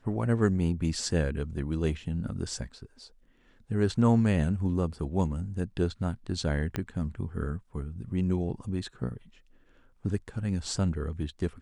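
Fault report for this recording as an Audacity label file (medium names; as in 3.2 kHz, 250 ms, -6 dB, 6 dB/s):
6.760000	6.760000	pop -16 dBFS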